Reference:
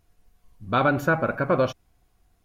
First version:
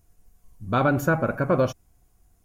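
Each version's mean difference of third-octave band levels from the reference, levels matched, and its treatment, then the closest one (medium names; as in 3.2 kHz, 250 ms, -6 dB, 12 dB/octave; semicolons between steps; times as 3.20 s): 2.0 dB: FFT filter 110 Hz 0 dB, 4 kHz -8 dB, 6.8 kHz +3 dB; trim +3.5 dB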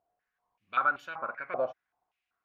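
9.5 dB: step-sequenced band-pass 5.2 Hz 710–3100 Hz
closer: first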